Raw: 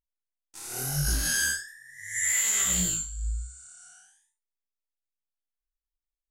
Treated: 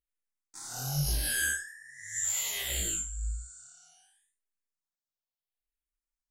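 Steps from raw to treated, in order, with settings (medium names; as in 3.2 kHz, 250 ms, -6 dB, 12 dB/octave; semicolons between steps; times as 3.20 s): barber-pole phaser -0.7 Hz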